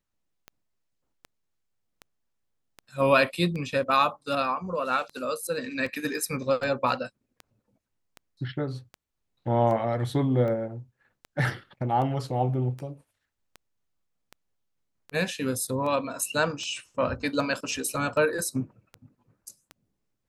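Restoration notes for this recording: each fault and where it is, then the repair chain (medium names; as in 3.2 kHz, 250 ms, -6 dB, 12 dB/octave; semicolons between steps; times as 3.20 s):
tick 78 rpm -25 dBFS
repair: de-click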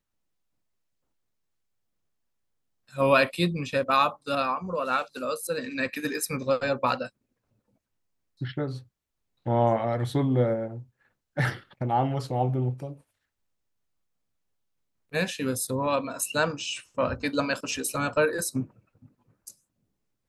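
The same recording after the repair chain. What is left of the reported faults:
nothing left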